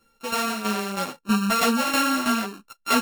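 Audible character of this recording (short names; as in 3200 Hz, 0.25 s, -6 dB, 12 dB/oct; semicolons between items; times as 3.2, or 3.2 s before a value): a buzz of ramps at a fixed pitch in blocks of 32 samples; tremolo saw down 3.1 Hz, depth 70%; a shimmering, thickened sound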